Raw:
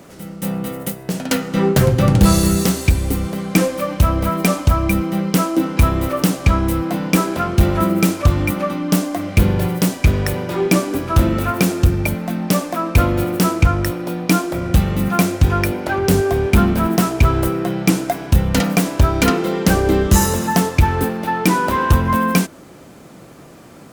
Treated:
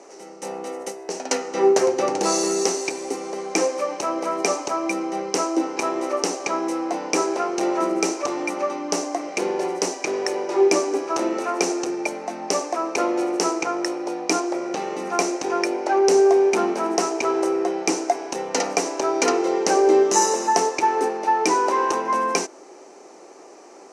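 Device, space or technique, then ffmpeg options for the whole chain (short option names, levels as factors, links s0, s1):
phone speaker on a table: -filter_complex "[0:a]highpass=f=340:w=0.5412,highpass=f=340:w=1.3066,equalizer=f=390:t=q:w=4:g=8,equalizer=f=820:t=q:w=4:g=8,equalizer=f=1500:t=q:w=4:g=-5,equalizer=f=3400:t=q:w=4:g=-10,equalizer=f=5900:t=q:w=4:g=10,lowpass=f=8300:w=0.5412,lowpass=f=8300:w=1.3066,asettb=1/sr,asplit=3[s0][s1][s2];[s0]atrim=end=14.404[s3];[s1]atrim=start=14.4:end=15.11,asetpts=PTS-STARTPTS,afade=t=in:d=0.004:c=qsin,afade=t=out:st=0.706:d=0.004:c=qsin,acrossover=split=5600[s4][s5];[s5]acompressor=threshold=0.00794:ratio=4:attack=1:release=60[s6];[s4][s6]amix=inputs=2:normalize=0[s7];[s2]atrim=start=15.106[s8];[s3][s7]acrossfade=d=0.004:c1=hsin:c2=qsin[s9];[s9][s8]acrossfade=d=0.004:c1=qsin:c2=hsin,volume=0.668"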